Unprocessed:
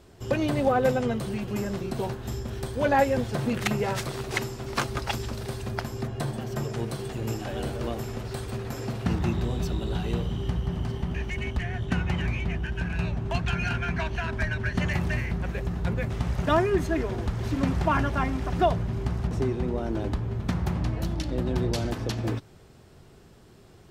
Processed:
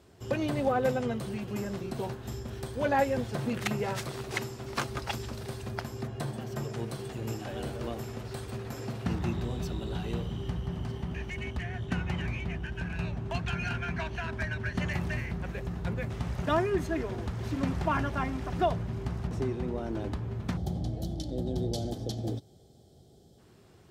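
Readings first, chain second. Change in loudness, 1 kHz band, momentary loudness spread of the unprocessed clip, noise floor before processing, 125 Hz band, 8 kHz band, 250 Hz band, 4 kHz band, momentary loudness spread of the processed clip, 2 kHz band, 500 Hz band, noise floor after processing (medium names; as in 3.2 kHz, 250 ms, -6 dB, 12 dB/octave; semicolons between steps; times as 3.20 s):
-5.0 dB, -4.5 dB, 8 LU, -52 dBFS, -5.0 dB, -4.5 dB, -4.5 dB, -4.5 dB, 8 LU, -4.5 dB, -4.5 dB, -57 dBFS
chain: time-frequency box 20.57–23.39 s, 850–3000 Hz -16 dB; high-pass 58 Hz; trim -4.5 dB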